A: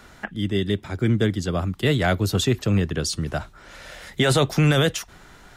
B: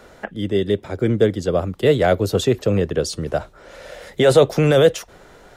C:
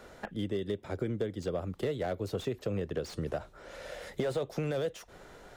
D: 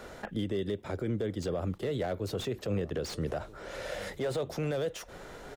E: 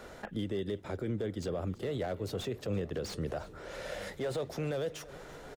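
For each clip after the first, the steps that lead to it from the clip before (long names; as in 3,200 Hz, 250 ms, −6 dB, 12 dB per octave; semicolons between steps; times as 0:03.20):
parametric band 510 Hz +13.5 dB 0.96 octaves; level −1.5 dB
downward compressor 6 to 1, threshold −24 dBFS, peak gain reduction 15.5 dB; slew-rate limiting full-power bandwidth 58 Hz; level −6 dB
brickwall limiter −29 dBFS, peak gain reduction 9 dB; slap from a distant wall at 220 metres, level −19 dB; level that may rise only so fast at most 430 dB per second; level +5.5 dB
repeating echo 337 ms, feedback 59%, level −19.5 dB; level −2.5 dB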